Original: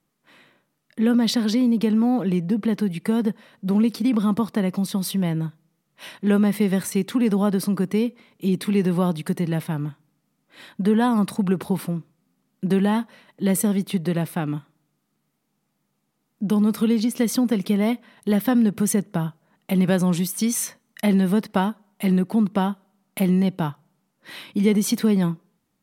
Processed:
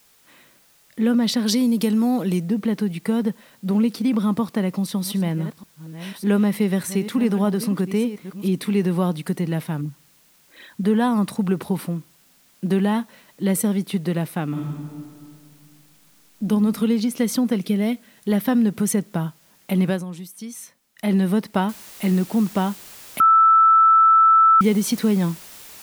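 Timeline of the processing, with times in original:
1.46–2.48 s: tone controls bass 0 dB, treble +13 dB
4.43–8.48 s: chunks repeated in reverse 603 ms, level -12.5 dB
9.81–10.84 s: resonances exaggerated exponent 2
14.49–16.43 s: reverb throw, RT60 2.2 s, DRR -3 dB
17.61–18.28 s: peaking EQ 1 kHz -9.5 dB 0.94 oct
19.85–21.14 s: dip -12.5 dB, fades 0.20 s
21.69 s: noise floor step -57 dB -42 dB
23.20–24.61 s: bleep 1.32 kHz -10 dBFS

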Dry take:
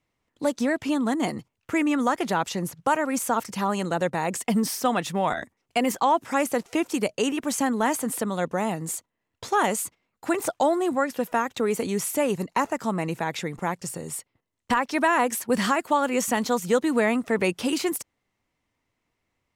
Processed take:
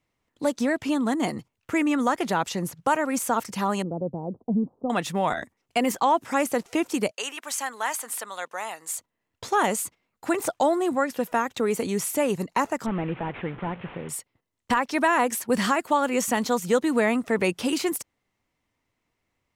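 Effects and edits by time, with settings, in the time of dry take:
3.82–4.90 s: Gaussian low-pass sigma 14 samples
7.11–8.96 s: high-pass 940 Hz
12.86–14.09 s: one-bit delta coder 16 kbps, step -36.5 dBFS

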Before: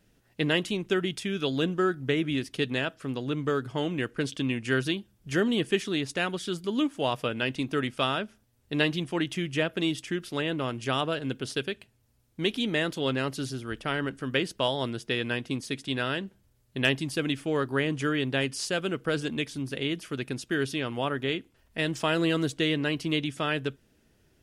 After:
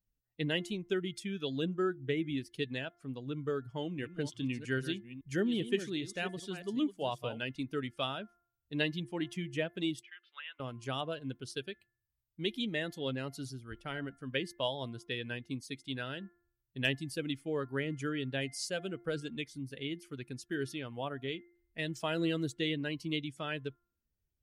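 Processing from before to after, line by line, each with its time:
3.63–7.43 s: chunks repeated in reverse 395 ms, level -8 dB
10.03–10.60 s: Chebyshev band-pass 1.2–3.1 kHz
whole clip: expander on every frequency bin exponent 1.5; de-hum 347.5 Hz, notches 6; dynamic bell 1.2 kHz, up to -4 dB, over -43 dBFS, Q 1.6; trim -4 dB

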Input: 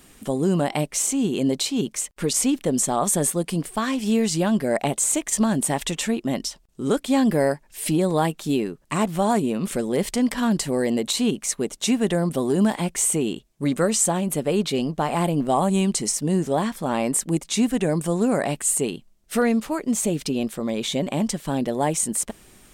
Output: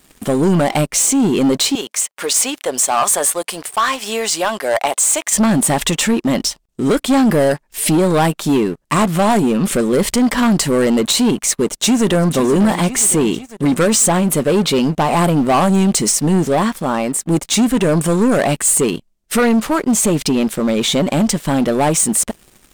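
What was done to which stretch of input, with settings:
1.75–5.33 s: Chebyshev high-pass 740 Hz
11.42–12.32 s: echo throw 500 ms, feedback 60%, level -14.5 dB
16.36–17.26 s: fade out, to -10 dB
whole clip: dynamic bell 1.2 kHz, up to +5 dB, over -40 dBFS, Q 2.2; waveshaping leveller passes 3

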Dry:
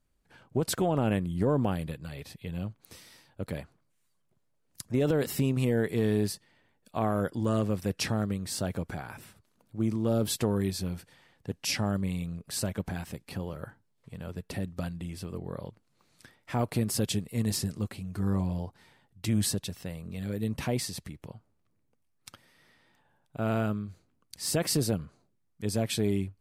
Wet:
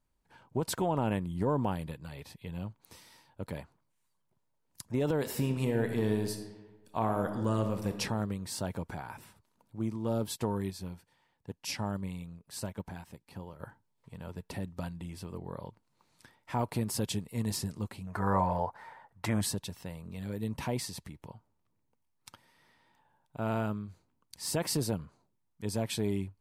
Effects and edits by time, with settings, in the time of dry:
5.20–7.92 s: reverb throw, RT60 1.2 s, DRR 6 dB
9.79–13.60 s: upward expansion, over -41 dBFS
18.07–19.41 s: high-order bell 990 Hz +14 dB 2.4 oct
whole clip: peaking EQ 930 Hz +10 dB 0.31 oct; trim -4 dB

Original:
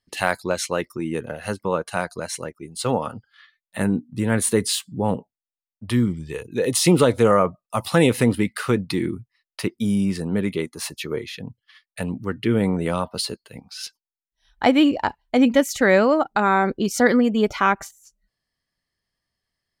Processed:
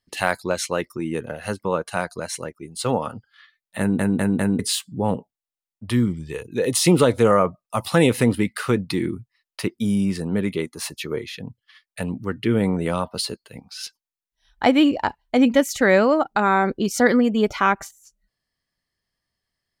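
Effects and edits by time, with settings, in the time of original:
3.79 s: stutter in place 0.20 s, 4 plays

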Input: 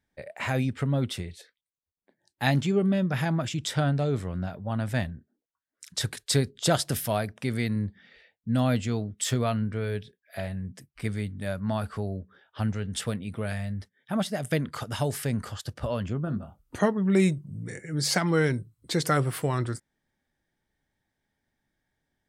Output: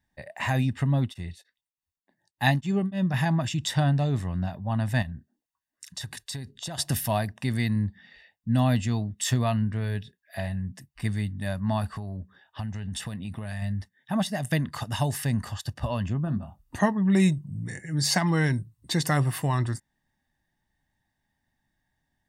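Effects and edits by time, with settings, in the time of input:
1.00–3.14 s: tremolo of two beating tones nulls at 3.4 Hz
5.02–6.78 s: compression, threshold -34 dBFS
11.95–13.62 s: compression, threshold -31 dBFS
whole clip: comb 1.1 ms, depth 60%

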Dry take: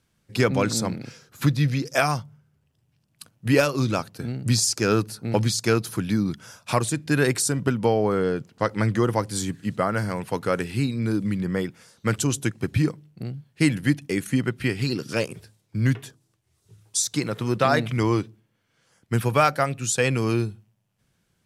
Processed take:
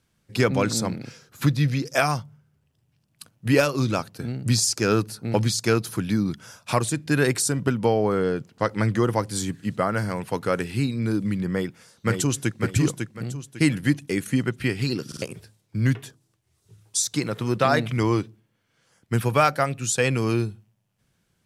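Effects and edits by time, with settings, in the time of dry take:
11.51–12.61 s: echo throw 550 ms, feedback 30%, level -5 dB
15.07 s: stutter in place 0.05 s, 3 plays

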